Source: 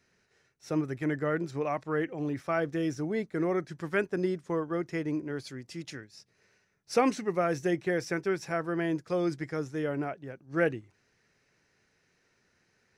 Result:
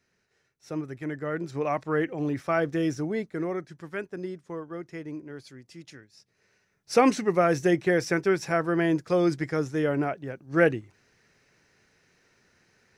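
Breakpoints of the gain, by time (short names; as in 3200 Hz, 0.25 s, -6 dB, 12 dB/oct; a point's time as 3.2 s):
1.19 s -3 dB
1.71 s +4 dB
2.91 s +4 dB
3.89 s -5.5 dB
6 s -5.5 dB
7.1 s +6 dB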